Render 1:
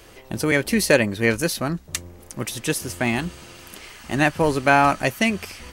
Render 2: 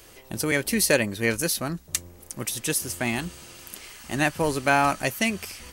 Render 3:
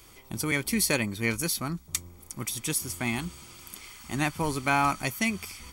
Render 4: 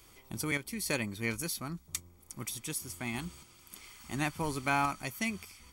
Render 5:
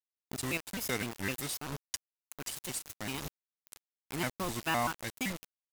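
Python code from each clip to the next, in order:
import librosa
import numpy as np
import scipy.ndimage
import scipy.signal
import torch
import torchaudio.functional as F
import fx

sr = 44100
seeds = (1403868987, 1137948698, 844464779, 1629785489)

y1 = fx.high_shelf(x, sr, hz=5300.0, db=10.0)
y1 = y1 * 10.0 ** (-5.0 / 20.0)
y2 = y1 + 0.5 * np.pad(y1, (int(0.9 * sr / 1000.0), 0))[:len(y1)]
y2 = y2 * 10.0 ** (-4.0 / 20.0)
y3 = fx.tremolo_random(y2, sr, seeds[0], hz=3.5, depth_pct=55)
y3 = y3 * 10.0 ** (-5.0 / 20.0)
y4 = fx.quant_dither(y3, sr, seeds[1], bits=6, dither='none')
y4 = fx.vibrato_shape(y4, sr, shape='square', rate_hz=3.9, depth_cents=250.0)
y4 = y4 * 10.0 ** (-2.0 / 20.0)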